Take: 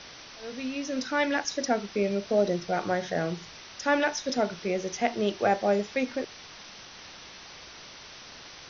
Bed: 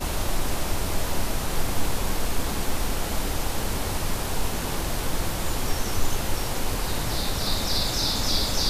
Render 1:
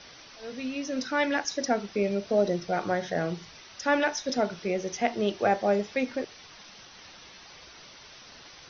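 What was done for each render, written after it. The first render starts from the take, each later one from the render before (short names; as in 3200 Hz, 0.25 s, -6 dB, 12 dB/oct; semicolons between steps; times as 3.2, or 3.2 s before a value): denoiser 6 dB, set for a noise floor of -47 dBFS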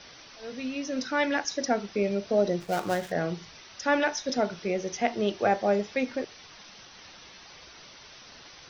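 2.6–3.12 switching dead time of 0.11 ms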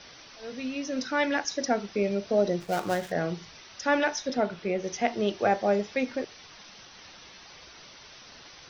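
4.28–4.84 LPF 3900 Hz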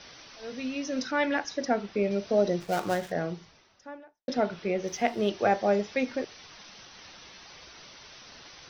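1.11–2.11 air absorption 120 m; 2.8–4.28 studio fade out; 4.87–5.29 backlash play -48.5 dBFS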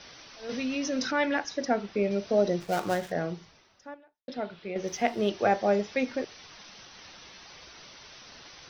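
0.49–1.13 fast leveller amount 50%; 3.94–4.76 ladder low-pass 4900 Hz, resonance 35%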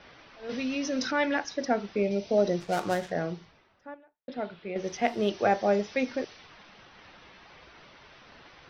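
low-pass opened by the level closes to 2200 Hz, open at -22.5 dBFS; 2.04–2.37 spectral gain 990–2000 Hz -8 dB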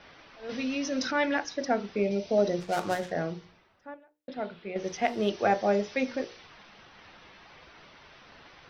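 notches 60/120/180/240/300/360/420/480/540/600 Hz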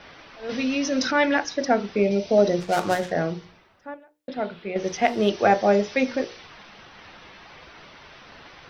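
gain +6.5 dB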